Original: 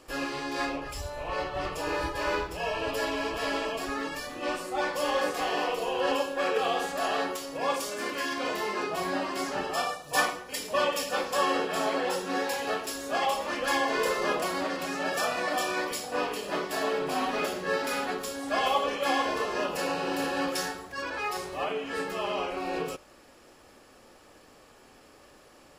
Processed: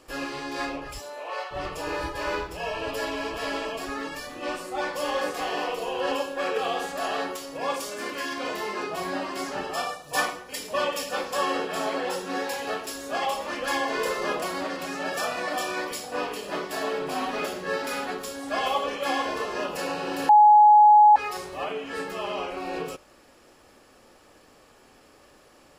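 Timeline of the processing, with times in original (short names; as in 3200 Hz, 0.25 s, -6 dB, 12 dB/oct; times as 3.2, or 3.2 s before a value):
0.98–1.5 HPF 180 Hz -> 670 Hz 24 dB/oct
20.29–21.16 bleep 841 Hz -10.5 dBFS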